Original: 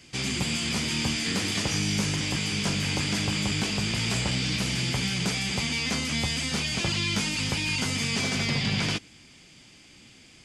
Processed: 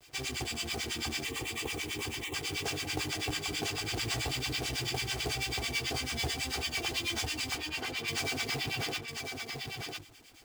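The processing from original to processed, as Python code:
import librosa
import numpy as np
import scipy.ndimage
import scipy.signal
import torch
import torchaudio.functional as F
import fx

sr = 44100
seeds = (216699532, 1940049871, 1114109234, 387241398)

p1 = fx.peak_eq(x, sr, hz=670.0, db=6.0, octaves=0.91)
p2 = fx.hum_notches(p1, sr, base_hz=50, count=7)
p3 = p2 + 0.96 * np.pad(p2, (int(2.6 * sr / 1000.0), 0))[:len(p2)]
p4 = fx.harmonic_tremolo(p3, sr, hz=9.1, depth_pct=100, crossover_hz=850.0)
p5 = fx.quant_companded(p4, sr, bits=4)
p6 = fx.fixed_phaser(p5, sr, hz=1000.0, stages=8, at=(1.24, 2.34))
p7 = fx.bandpass_edges(p6, sr, low_hz=210.0, high_hz=3300.0, at=(7.55, 8.08))
p8 = p7 + fx.echo_single(p7, sr, ms=1001, db=-5.0, dry=0)
y = F.gain(torch.from_numpy(p8), -6.0).numpy()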